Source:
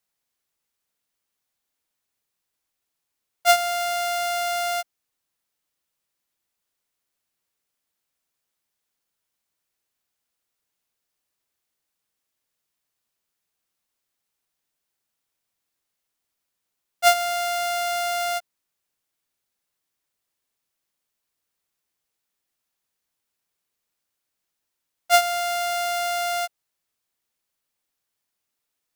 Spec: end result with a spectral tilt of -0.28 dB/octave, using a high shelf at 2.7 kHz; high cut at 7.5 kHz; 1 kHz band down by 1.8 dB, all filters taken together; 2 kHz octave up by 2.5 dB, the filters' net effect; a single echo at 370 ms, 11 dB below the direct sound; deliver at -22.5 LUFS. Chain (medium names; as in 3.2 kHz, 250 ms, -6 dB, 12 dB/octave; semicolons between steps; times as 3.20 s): low-pass 7.5 kHz; peaking EQ 1 kHz -5 dB; peaking EQ 2 kHz +7 dB; treble shelf 2.7 kHz -6.5 dB; delay 370 ms -11 dB; trim +2 dB